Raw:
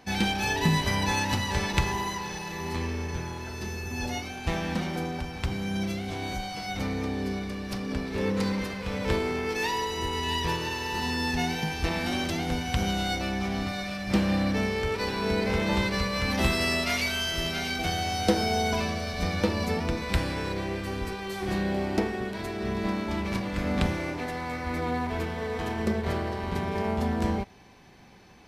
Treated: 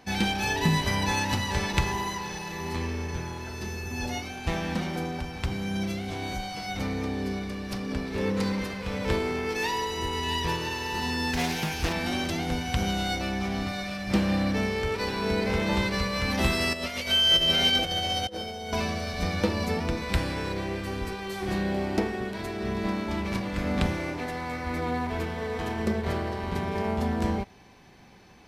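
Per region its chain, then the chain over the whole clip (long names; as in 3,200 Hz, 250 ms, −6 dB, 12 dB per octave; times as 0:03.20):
0:11.33–0:11.93: high-shelf EQ 7,900 Hz +11.5 dB + highs frequency-modulated by the lows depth 0.51 ms
0:16.73–0:18.73: compressor whose output falls as the input rises −31 dBFS, ratio −0.5 + hollow resonant body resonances 530/3,100 Hz, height 16 dB, ringing for 90 ms
whole clip: no processing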